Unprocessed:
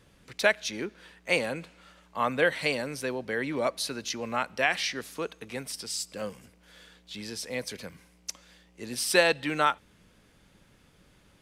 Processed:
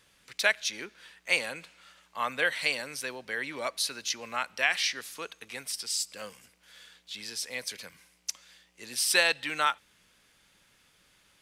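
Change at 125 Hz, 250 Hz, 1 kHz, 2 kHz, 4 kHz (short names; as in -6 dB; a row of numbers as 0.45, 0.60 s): -12.5, -11.0, -3.0, +0.5, +2.5 dB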